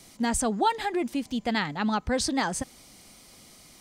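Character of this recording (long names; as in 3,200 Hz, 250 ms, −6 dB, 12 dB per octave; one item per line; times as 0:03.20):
background noise floor −53 dBFS
spectral slope −3.5 dB per octave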